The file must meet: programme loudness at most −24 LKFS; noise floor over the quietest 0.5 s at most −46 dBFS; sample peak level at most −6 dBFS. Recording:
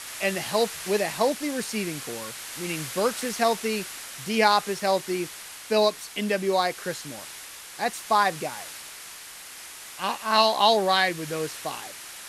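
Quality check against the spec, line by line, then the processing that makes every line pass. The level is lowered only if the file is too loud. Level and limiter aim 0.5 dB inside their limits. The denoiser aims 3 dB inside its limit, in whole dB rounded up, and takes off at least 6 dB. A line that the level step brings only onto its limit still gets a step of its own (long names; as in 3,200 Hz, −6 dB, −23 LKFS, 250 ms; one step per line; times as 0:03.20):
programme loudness −25.5 LKFS: in spec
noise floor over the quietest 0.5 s −42 dBFS: out of spec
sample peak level −5.5 dBFS: out of spec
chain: broadband denoise 7 dB, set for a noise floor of −42 dBFS
brickwall limiter −6.5 dBFS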